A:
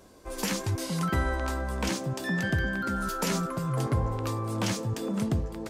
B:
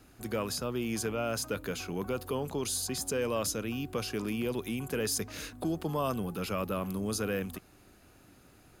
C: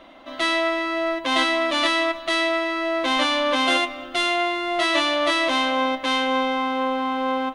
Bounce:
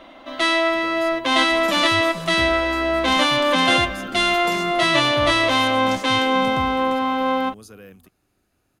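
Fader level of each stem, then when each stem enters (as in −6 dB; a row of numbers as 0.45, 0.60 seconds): −3.5, −10.5, +3.0 decibels; 1.25, 0.50, 0.00 seconds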